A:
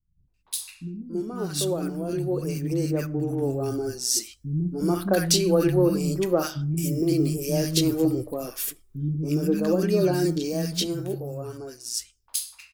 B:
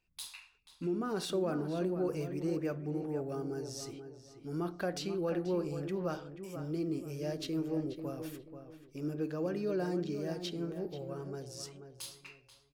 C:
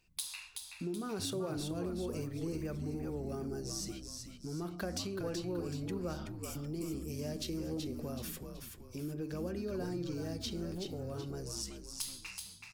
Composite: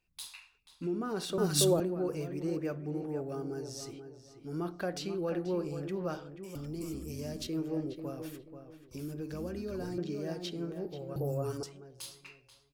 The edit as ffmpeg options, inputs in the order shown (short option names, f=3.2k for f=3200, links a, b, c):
-filter_complex "[0:a]asplit=2[a][b];[2:a]asplit=2[c][d];[1:a]asplit=5[e][f][g][h][i];[e]atrim=end=1.382[j];[a]atrim=start=1.378:end=1.802[k];[f]atrim=start=1.798:end=6.552[l];[c]atrim=start=6.548:end=7.472[m];[g]atrim=start=7.468:end=8.912[n];[d]atrim=start=8.908:end=9.982[o];[h]atrim=start=9.978:end=11.162[p];[b]atrim=start=11.158:end=11.632[q];[i]atrim=start=11.628[r];[j][k]acrossfade=d=0.004:c1=hsin:c2=hsin[s];[s][l]acrossfade=d=0.004:c1=hsin:c2=hsin[t];[t][m]acrossfade=d=0.004:c1=hsin:c2=hsin[u];[u][n]acrossfade=d=0.004:c1=hsin:c2=hsin[v];[v][o]acrossfade=d=0.004:c1=hsin:c2=hsin[w];[w][p]acrossfade=d=0.004:c1=hsin:c2=hsin[x];[x][q]acrossfade=d=0.004:c1=hsin:c2=hsin[y];[y][r]acrossfade=d=0.004:c1=hsin:c2=hsin"